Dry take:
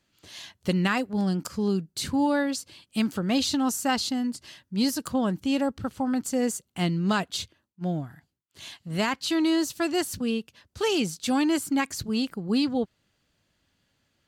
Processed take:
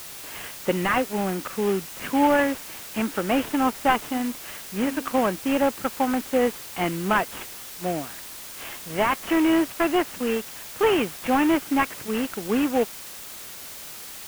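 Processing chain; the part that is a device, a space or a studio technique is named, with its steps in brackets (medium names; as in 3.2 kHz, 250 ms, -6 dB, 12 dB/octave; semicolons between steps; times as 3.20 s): 4.01–5.18 s: de-hum 269.6 Hz, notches 5; army field radio (band-pass 370–2900 Hz; CVSD coder 16 kbps; white noise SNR 14 dB); trim +8.5 dB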